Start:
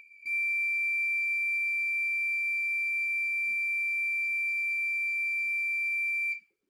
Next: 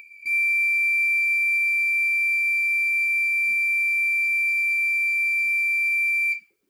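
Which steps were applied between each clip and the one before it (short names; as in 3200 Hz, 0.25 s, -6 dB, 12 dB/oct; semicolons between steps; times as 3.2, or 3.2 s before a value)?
high shelf 9900 Hz +8.5 dB; gain +7.5 dB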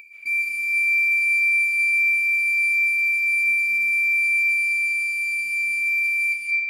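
digital reverb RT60 2.3 s, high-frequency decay 0.55×, pre-delay 0.11 s, DRR -3.5 dB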